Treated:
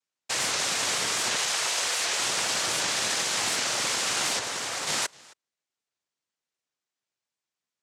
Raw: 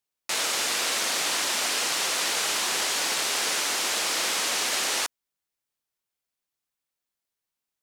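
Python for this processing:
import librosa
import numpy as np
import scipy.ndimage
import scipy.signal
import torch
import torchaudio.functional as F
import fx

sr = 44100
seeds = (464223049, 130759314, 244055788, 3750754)

y = fx.highpass(x, sr, hz=680.0, slope=12, at=(1.36, 2.18))
y = fx.fixed_phaser(y, sr, hz=1600.0, stages=4, at=(4.39, 4.87))
y = fx.noise_vocoder(y, sr, seeds[0], bands=3)
y = y + 10.0 ** (-24.0 / 20.0) * np.pad(y, (int(264 * sr / 1000.0), 0))[:len(y)]
y = fx.record_warp(y, sr, rpm=78.0, depth_cents=160.0)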